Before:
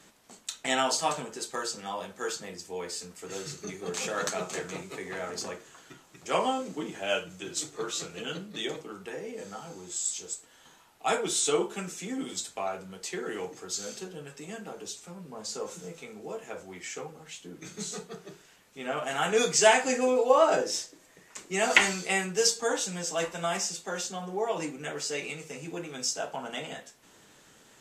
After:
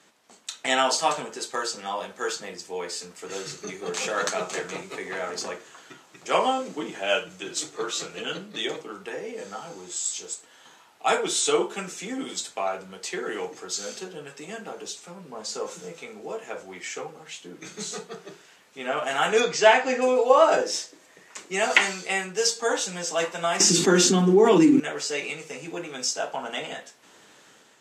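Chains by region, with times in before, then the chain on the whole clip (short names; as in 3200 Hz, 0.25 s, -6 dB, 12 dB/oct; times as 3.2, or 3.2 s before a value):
19.4–20.02 air absorption 130 m + mismatched tape noise reduction encoder only
23.6–24.8 resonant low shelf 430 Hz +11 dB, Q 3 + notches 50/100/150/200/250/300 Hz + fast leveller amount 70%
whole clip: HPF 340 Hz 6 dB/oct; high shelf 10000 Hz -11.5 dB; AGC gain up to 6 dB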